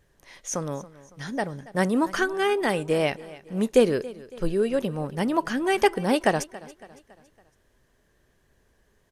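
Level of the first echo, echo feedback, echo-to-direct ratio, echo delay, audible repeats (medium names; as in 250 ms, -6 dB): -19.0 dB, 47%, -18.0 dB, 279 ms, 3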